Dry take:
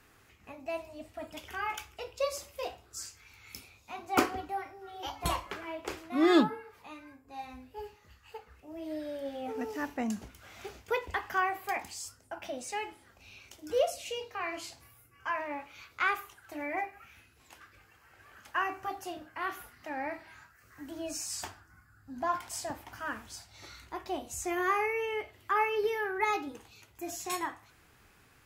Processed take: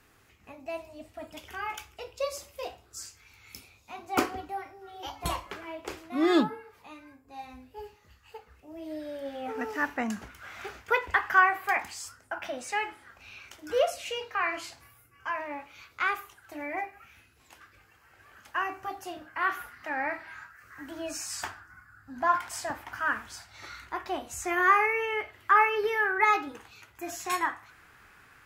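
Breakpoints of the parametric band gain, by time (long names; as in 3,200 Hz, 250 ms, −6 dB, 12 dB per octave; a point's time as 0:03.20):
parametric band 1,500 Hz 1.5 octaves
0:08.97 −0.5 dB
0:09.63 +11.5 dB
0:14.38 +11.5 dB
0:15.31 +1 dB
0:18.95 +1 dB
0:19.51 +10.5 dB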